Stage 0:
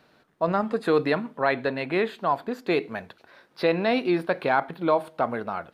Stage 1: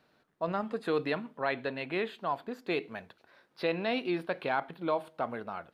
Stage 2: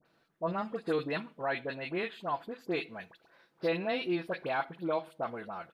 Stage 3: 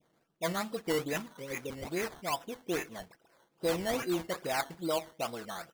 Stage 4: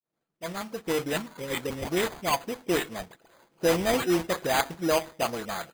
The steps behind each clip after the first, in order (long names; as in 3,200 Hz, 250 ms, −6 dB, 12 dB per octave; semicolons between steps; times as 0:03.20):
dynamic equaliser 3,000 Hz, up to +6 dB, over −47 dBFS, Q 2.3; level −8.5 dB
comb filter 6 ms, depth 31%; all-pass dispersion highs, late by 56 ms, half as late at 1,600 Hz; level −2 dB
low-pass that shuts in the quiet parts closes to 1,200 Hz, open at −28.5 dBFS; healed spectral selection 0:01.33–0:01.84, 550–1,900 Hz; sample-and-hold swept by an LFO 14×, swing 60% 2.4 Hz
fade in at the beginning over 1.53 s; bad sample-rate conversion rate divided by 8×, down none, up hold; level +7.5 dB